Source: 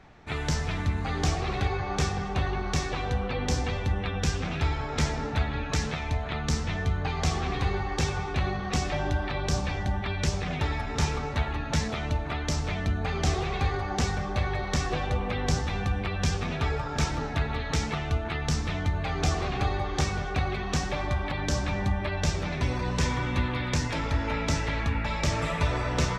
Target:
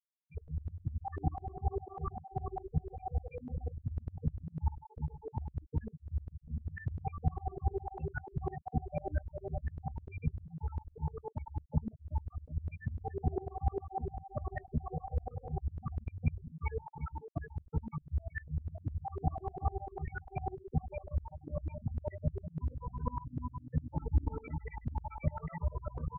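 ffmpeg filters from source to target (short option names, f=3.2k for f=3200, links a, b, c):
-filter_complex "[0:a]lowshelf=f=260:g=-6,acrusher=bits=10:mix=0:aa=0.000001,asplit=3[a][b][c];[a]afade=t=out:st=23.9:d=0.02[d];[b]bass=f=250:g=5,treble=f=4k:g=-14,afade=t=in:st=23.9:d=0.02,afade=t=out:st=24.34:d=0.02[e];[c]afade=t=in:st=24.34:d=0.02[f];[d][e][f]amix=inputs=3:normalize=0,aecho=1:1:115:0.158,afftfilt=real='re*gte(hypot(re,im),0.126)':imag='im*gte(hypot(re,im),0.126)':win_size=1024:overlap=0.75,asplit=2[g][h];[h]adelay=13,volume=-3dB[i];[g][i]amix=inputs=2:normalize=0,aeval=exprs='val(0)*pow(10,-28*if(lt(mod(-10*n/s,1),2*abs(-10)/1000),1-mod(-10*n/s,1)/(2*abs(-10)/1000),(mod(-10*n/s,1)-2*abs(-10)/1000)/(1-2*abs(-10)/1000))/20)':c=same,volume=3dB"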